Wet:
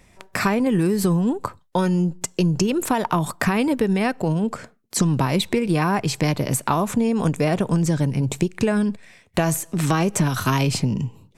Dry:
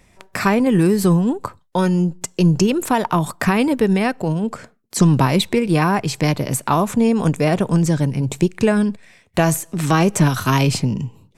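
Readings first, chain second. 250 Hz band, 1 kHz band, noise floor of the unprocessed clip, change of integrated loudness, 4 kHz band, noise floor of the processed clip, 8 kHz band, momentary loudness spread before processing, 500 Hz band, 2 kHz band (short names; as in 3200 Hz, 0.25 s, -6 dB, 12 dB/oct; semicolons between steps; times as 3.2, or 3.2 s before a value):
-3.5 dB, -3.5 dB, -56 dBFS, -3.5 dB, -2.5 dB, -56 dBFS, -1.5 dB, 8 LU, -4.0 dB, -3.0 dB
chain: compressor, threshold -16 dBFS, peak gain reduction 7.5 dB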